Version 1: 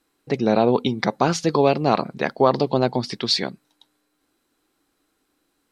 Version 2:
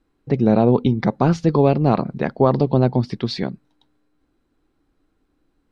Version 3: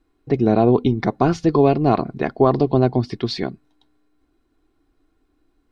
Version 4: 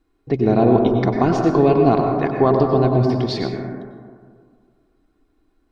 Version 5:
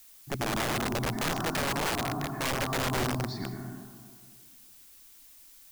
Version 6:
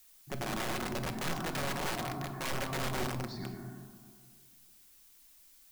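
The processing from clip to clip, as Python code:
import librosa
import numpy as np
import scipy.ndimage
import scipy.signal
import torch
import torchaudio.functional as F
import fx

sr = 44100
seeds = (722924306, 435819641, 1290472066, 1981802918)

y1 = fx.riaa(x, sr, side='playback')
y1 = y1 * 10.0 ** (-2.0 / 20.0)
y2 = y1 + 0.44 * np.pad(y1, (int(2.8 * sr / 1000.0), 0))[:len(y1)]
y3 = fx.rev_plate(y2, sr, seeds[0], rt60_s=1.9, hf_ratio=0.25, predelay_ms=85, drr_db=2.0)
y3 = y3 * 10.0 ** (-1.0 / 20.0)
y4 = fx.fixed_phaser(y3, sr, hz=1200.0, stages=4)
y4 = (np.mod(10.0 ** (16.0 / 20.0) * y4 + 1.0, 2.0) - 1.0) / 10.0 ** (16.0 / 20.0)
y4 = fx.dmg_noise_colour(y4, sr, seeds[1], colour='blue', level_db=-46.0)
y4 = y4 * 10.0 ** (-8.0 / 20.0)
y5 = fx.room_shoebox(y4, sr, seeds[2], volume_m3=940.0, walls='furnished', distance_m=1.0)
y5 = y5 * 10.0 ** (-6.5 / 20.0)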